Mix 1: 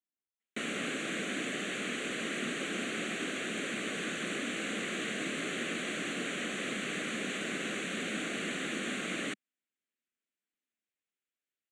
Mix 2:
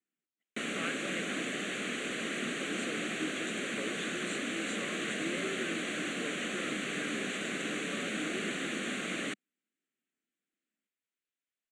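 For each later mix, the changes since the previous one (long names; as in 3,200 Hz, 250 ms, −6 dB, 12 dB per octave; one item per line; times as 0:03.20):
speech +11.0 dB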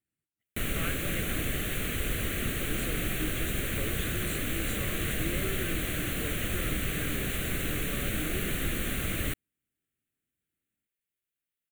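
master: remove elliptic band-pass filter 210–7,500 Hz, stop band 40 dB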